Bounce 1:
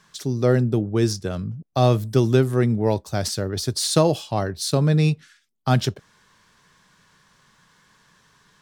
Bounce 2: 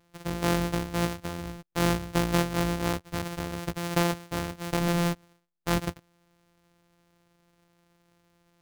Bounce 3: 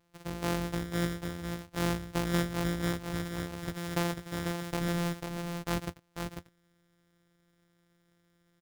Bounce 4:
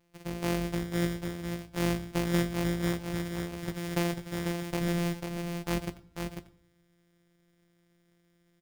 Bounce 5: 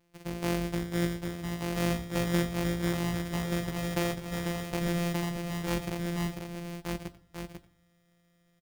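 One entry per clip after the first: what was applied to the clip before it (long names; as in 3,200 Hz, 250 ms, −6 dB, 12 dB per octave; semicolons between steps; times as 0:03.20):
samples sorted by size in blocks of 256 samples; level −8 dB
single-tap delay 494 ms −5.5 dB; level −6 dB
convolution reverb RT60 0.55 s, pre-delay 5 ms, DRR 7.5 dB
single-tap delay 1,180 ms −4 dB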